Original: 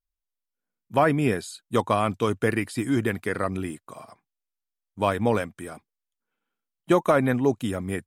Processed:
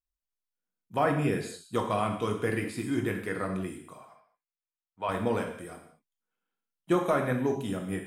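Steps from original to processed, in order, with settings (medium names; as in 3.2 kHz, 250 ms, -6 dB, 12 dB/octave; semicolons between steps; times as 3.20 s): 3.97–5.09 s: three-band isolator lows -13 dB, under 560 Hz, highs -18 dB, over 3.4 kHz; gated-style reverb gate 250 ms falling, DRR 2 dB; trim -7.5 dB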